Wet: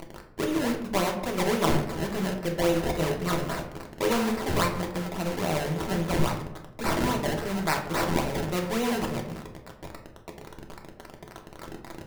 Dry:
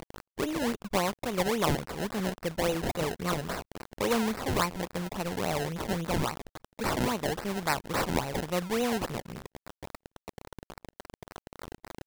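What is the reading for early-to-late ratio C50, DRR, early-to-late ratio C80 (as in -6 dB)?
8.0 dB, 1.0 dB, 11.0 dB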